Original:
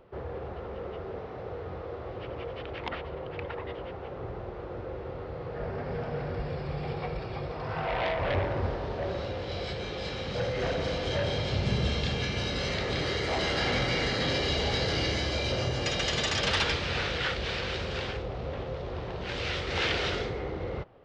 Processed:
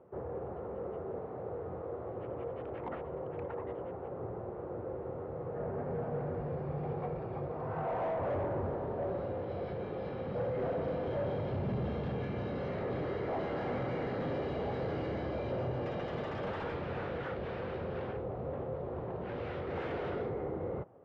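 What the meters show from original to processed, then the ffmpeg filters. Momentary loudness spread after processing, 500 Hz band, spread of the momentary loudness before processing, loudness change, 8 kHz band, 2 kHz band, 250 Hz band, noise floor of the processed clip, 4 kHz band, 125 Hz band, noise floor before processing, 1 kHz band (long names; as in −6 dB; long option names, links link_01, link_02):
6 LU, −2.5 dB, 12 LU, −6.0 dB, below −30 dB, −14.5 dB, −3.0 dB, −42 dBFS, −24.5 dB, −6.0 dB, −40 dBFS, −4.5 dB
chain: -af "highpass=110,volume=29dB,asoftclip=hard,volume=-29dB,lowpass=1000,volume=-1dB"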